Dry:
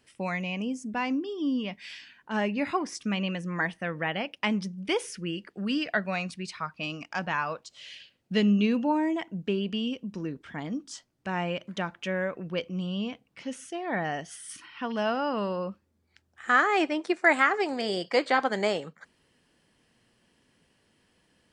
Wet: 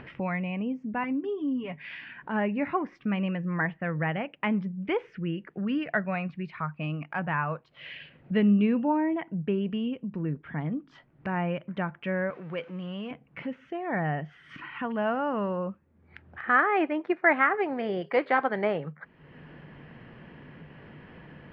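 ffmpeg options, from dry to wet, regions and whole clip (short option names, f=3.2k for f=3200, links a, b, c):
-filter_complex "[0:a]asettb=1/sr,asplit=3[a][b][c];[a]atrim=end=1.034[d];[b]atrim=start=1.03:end=1.82,asetpts=PTS-STARTPTS,afade=t=in:d=0.004:c=qsin,afade=t=out:st=0.786:d=0.004:c=qsin,acompressor=threshold=-31dB:ratio=5:attack=3.2:release=140:knee=1:detection=peak,aecho=1:1:7.3:0.77,atrim=end_sample=34839[e];[c]atrim=start=1.816[f];[d][e]acrossfade=d=0.004:c1=hsin:c2=qsin[g];[g][f]acrossfade=d=0.004:c1=qsin:c2=hsin,asettb=1/sr,asplit=3[h][i][j];[h]atrim=end=12.304[k];[i]atrim=start=12.3:end=13.11,asetpts=PTS-STARTPTS,afade=t=in:d=0.004:c=qsin,afade=t=out:st=0.806:d=0.004:c=qsin,aeval=exprs='val(0)+0.5*0.00631*sgn(val(0))':c=same,highpass=f=600:p=1,equalizer=f=6.8k:w=1.5:g=10[l];[j]atrim=start=13.106[m];[k][l]acrossfade=d=0.004:c1=hsin:c2=qsin[n];[n][m]acrossfade=d=0.004:c1=qsin:c2=hsin,asettb=1/sr,asplit=3[o][p][q];[o]atrim=end=18.014[r];[p]atrim=start=18.01:end=18.64,asetpts=PTS-STARTPTS,afade=t=in:d=0.004:c=qsin,afade=t=out:st=0.626:d=0.004:c=qsin,bass=f=250:g=-3,treble=f=4k:g=8,bandreject=f=5.6k:w=7.7,aeval=exprs='val(0)+0.00158*sin(2*PI*410*n/s)':c=same[s];[q]atrim=start=18.636[t];[r][s]acrossfade=d=0.004:c1=hsin:c2=qsin[u];[u][t]acrossfade=d=0.004:c1=qsin:c2=hsin,lowpass=f=2.3k:w=0.5412,lowpass=f=2.3k:w=1.3066,equalizer=f=150:w=5:g=11.5,acompressor=mode=upward:threshold=-31dB:ratio=2.5"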